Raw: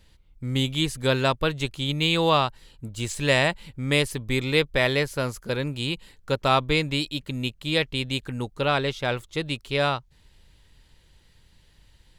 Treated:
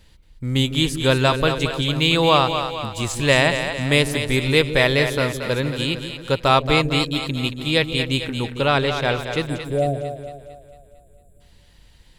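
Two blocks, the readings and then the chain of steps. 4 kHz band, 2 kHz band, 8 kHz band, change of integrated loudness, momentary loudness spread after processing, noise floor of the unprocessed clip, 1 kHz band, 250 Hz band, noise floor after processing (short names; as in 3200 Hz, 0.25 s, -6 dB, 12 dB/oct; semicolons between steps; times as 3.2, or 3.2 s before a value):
+5.0 dB, +5.0 dB, +5.5 dB, +5.0 dB, 9 LU, -58 dBFS, +5.0 dB, +5.5 dB, -52 dBFS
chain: spectral delete 9.49–11.41, 750–7100 Hz; split-band echo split 450 Hz, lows 0.154 s, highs 0.226 s, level -8 dB; gain +4.5 dB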